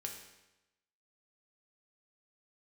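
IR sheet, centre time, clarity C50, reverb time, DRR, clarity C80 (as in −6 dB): 31 ms, 5.5 dB, 1.0 s, 1.5 dB, 8.0 dB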